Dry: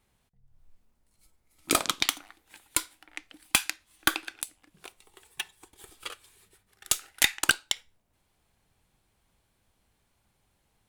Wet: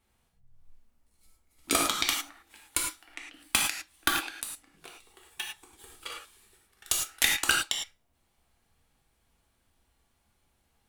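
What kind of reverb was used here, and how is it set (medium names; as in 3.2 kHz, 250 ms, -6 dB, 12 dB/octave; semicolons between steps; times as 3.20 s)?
gated-style reverb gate 130 ms flat, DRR -1 dB; trim -3.5 dB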